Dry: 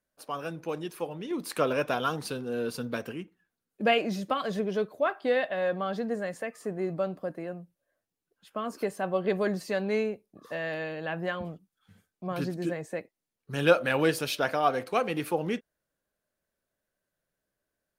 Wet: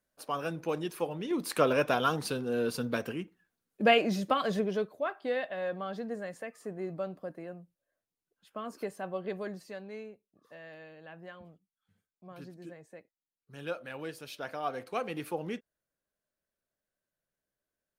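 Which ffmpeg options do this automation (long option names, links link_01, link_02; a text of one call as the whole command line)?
ffmpeg -i in.wav -af "volume=10dB,afade=type=out:start_time=4.5:duration=0.47:silence=0.446684,afade=type=out:start_time=8.81:duration=1.1:silence=0.334965,afade=type=in:start_time=14.18:duration=0.86:silence=0.354813" out.wav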